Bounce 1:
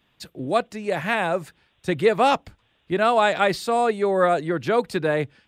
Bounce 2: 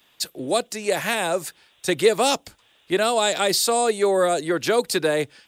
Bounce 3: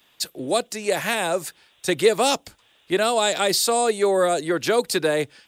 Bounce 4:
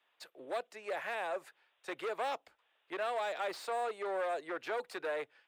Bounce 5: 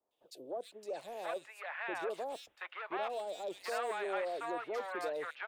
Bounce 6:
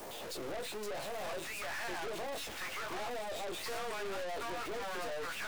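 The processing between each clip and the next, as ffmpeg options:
ffmpeg -i in.wav -filter_complex "[0:a]bass=frequency=250:gain=-12,treble=frequency=4000:gain=12,acrossover=split=480|3500[link_01][link_02][link_03];[link_02]acompressor=threshold=-29dB:ratio=6[link_04];[link_01][link_04][link_03]amix=inputs=3:normalize=0,volume=5dB" out.wav
ffmpeg -i in.wav -af anull out.wav
ffmpeg -i in.wav -filter_complex "[0:a]aeval=exprs='0.501*(cos(1*acos(clip(val(0)/0.501,-1,1)))-cos(1*PI/2))+0.0282*(cos(7*acos(clip(val(0)/0.501,-1,1)))-cos(7*PI/2))':channel_layout=same,asoftclip=type=hard:threshold=-22.5dB,acrossover=split=430 2700:gain=0.0794 1 0.112[link_01][link_02][link_03];[link_01][link_02][link_03]amix=inputs=3:normalize=0,volume=-7dB" out.wav
ffmpeg -i in.wav -filter_complex "[0:a]acrossover=split=740|3400[link_01][link_02][link_03];[link_03]adelay=110[link_04];[link_02]adelay=730[link_05];[link_01][link_05][link_04]amix=inputs=3:normalize=0,volume=1dB" out.wav
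ffmpeg -i in.wav -af "aeval=exprs='val(0)+0.5*0.00596*sgn(val(0))':channel_layout=same,flanger=delay=17:depth=2.3:speed=0.53,aeval=exprs='(tanh(355*val(0)+0.65)-tanh(0.65))/355':channel_layout=same,volume=12.5dB" out.wav

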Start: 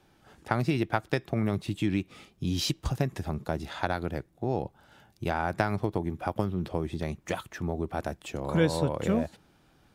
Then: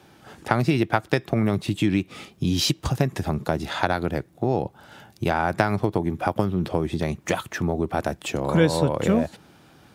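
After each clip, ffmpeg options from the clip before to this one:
ffmpeg -i in.wav -filter_complex "[0:a]asplit=2[link_01][link_02];[link_02]acompressor=threshold=-34dB:ratio=6,volume=2.5dB[link_03];[link_01][link_03]amix=inputs=2:normalize=0,highpass=84,volume=3.5dB" out.wav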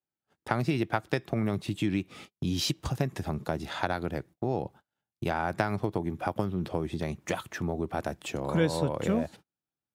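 ffmpeg -i in.wav -af "agate=range=-38dB:threshold=-40dB:ratio=16:detection=peak,volume=-7dB" out.wav

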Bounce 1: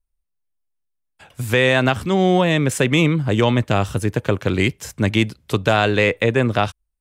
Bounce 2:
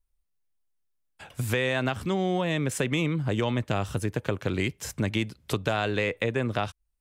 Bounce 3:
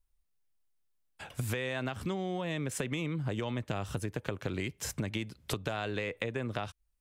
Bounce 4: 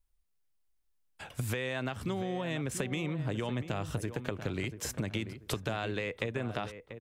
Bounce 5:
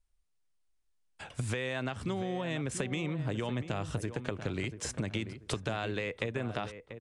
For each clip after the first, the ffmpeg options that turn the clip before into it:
ffmpeg -i in.wav -af "acompressor=threshold=-28dB:ratio=2.5" out.wav
ffmpeg -i in.wav -af "acompressor=threshold=-31dB:ratio=6" out.wav
ffmpeg -i in.wav -filter_complex "[0:a]asplit=2[link_01][link_02];[link_02]adelay=688,lowpass=frequency=1500:poles=1,volume=-10dB,asplit=2[link_03][link_04];[link_04]adelay=688,lowpass=frequency=1500:poles=1,volume=0.29,asplit=2[link_05][link_06];[link_06]adelay=688,lowpass=frequency=1500:poles=1,volume=0.29[link_07];[link_01][link_03][link_05][link_07]amix=inputs=4:normalize=0" out.wav
ffmpeg -i in.wav -af "aresample=22050,aresample=44100" out.wav

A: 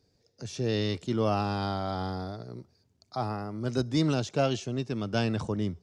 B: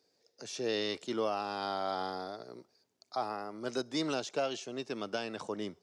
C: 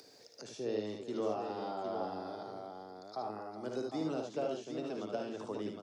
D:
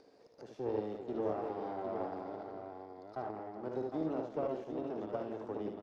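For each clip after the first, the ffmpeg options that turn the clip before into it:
ffmpeg -i in.wav -af "highpass=390,alimiter=limit=-22dB:level=0:latency=1:release=447" out.wav
ffmpeg -i in.wav -filter_complex "[0:a]acrossover=split=200|900[link_01][link_02][link_03];[link_03]acompressor=threshold=-50dB:ratio=6[link_04];[link_01][link_02][link_04]amix=inputs=3:normalize=0,aecho=1:1:57|75|401|760:0.447|0.596|0.251|0.501,acompressor=mode=upward:threshold=-41dB:ratio=2.5,volume=-3.5dB" out.wav
ffmpeg -i in.wav -filter_complex "[0:a]aeval=exprs='if(lt(val(0),0),0.251*val(0),val(0))':channel_layout=same,bandpass=frequency=400:width_type=q:width=0.52:csg=0,asplit=2[link_01][link_02];[link_02]adelay=170,highpass=300,lowpass=3400,asoftclip=type=hard:threshold=-35.5dB,volume=-13dB[link_03];[link_01][link_03]amix=inputs=2:normalize=0,volume=4dB" out.wav

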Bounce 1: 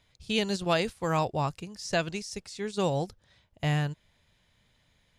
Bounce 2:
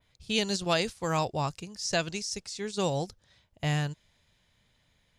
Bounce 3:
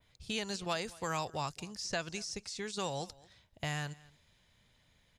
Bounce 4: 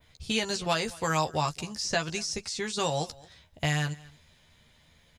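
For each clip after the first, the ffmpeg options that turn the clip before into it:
ffmpeg -i in.wav -af "adynamicequalizer=threshold=0.00316:dfrequency=6000:dqfactor=0.88:tfrequency=6000:tqfactor=0.88:attack=5:release=100:ratio=0.375:range=4:mode=boostabove:tftype=bell,volume=-1.5dB" out.wav
ffmpeg -i in.wav -filter_complex "[0:a]acrossover=split=880|1900|5200[link_01][link_02][link_03][link_04];[link_01]acompressor=threshold=-40dB:ratio=4[link_05];[link_02]acompressor=threshold=-37dB:ratio=4[link_06];[link_03]acompressor=threshold=-45dB:ratio=4[link_07];[link_04]acompressor=threshold=-46dB:ratio=4[link_08];[link_05][link_06][link_07][link_08]amix=inputs=4:normalize=0,aecho=1:1:224:0.075" out.wav
ffmpeg -i in.wav -filter_complex "[0:a]asplit=2[link_01][link_02];[link_02]adelay=13,volume=-5.5dB[link_03];[link_01][link_03]amix=inputs=2:normalize=0,volume=7dB" out.wav

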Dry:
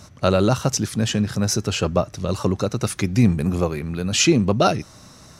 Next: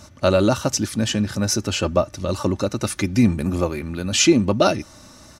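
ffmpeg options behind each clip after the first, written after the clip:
ffmpeg -i in.wav -af "aecho=1:1:3.4:0.48" out.wav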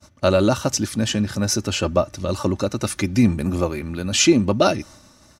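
ffmpeg -i in.wav -af "agate=range=-33dB:threshold=-39dB:ratio=3:detection=peak" out.wav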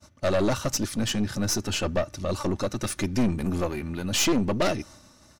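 ffmpeg -i in.wav -af "aeval=exprs='(tanh(7.94*val(0)+0.55)-tanh(0.55))/7.94':channel_layout=same,volume=-1dB" out.wav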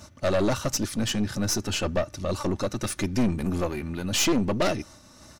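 ffmpeg -i in.wav -af "acompressor=mode=upward:threshold=-40dB:ratio=2.5" out.wav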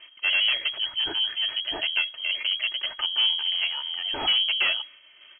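ffmpeg -i in.wav -af "lowpass=frequency=2800:width_type=q:width=0.5098,lowpass=frequency=2800:width_type=q:width=0.6013,lowpass=frequency=2800:width_type=q:width=0.9,lowpass=frequency=2800:width_type=q:width=2.563,afreqshift=-3300" out.wav

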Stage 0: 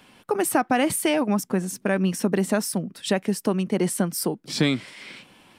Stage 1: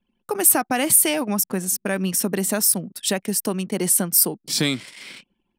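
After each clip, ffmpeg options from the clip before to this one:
ffmpeg -i in.wav -af "anlmdn=0.1,aemphasis=mode=production:type=75fm,volume=-1dB" out.wav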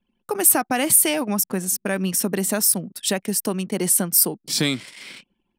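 ffmpeg -i in.wav -af anull out.wav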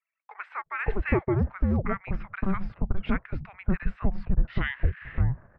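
ffmpeg -i in.wav -filter_complex "[0:a]highpass=frequency=300:width_type=q:width=0.5412,highpass=frequency=300:width_type=q:width=1.307,lowpass=frequency=2500:width_type=q:width=0.5176,lowpass=frequency=2500:width_type=q:width=0.7071,lowpass=frequency=2500:width_type=q:width=1.932,afreqshift=-390,asubboost=boost=2:cutoff=170,acrossover=split=1000[link_01][link_02];[link_01]adelay=570[link_03];[link_03][link_02]amix=inputs=2:normalize=0" out.wav

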